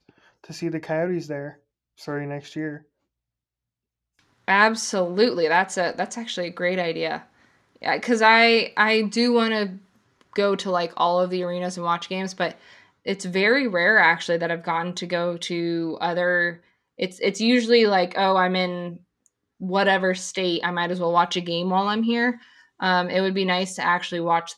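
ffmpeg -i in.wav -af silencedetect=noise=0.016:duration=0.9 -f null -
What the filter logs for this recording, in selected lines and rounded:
silence_start: 2.78
silence_end: 4.48 | silence_duration: 1.70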